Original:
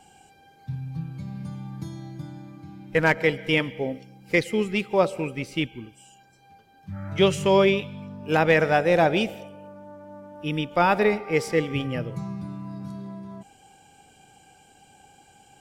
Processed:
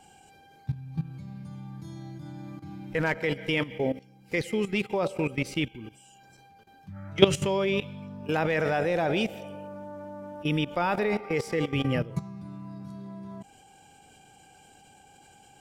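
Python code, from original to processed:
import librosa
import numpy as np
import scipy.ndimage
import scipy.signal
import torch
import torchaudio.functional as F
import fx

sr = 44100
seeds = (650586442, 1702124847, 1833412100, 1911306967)

y = fx.level_steps(x, sr, step_db=15)
y = y * librosa.db_to_amplitude(4.5)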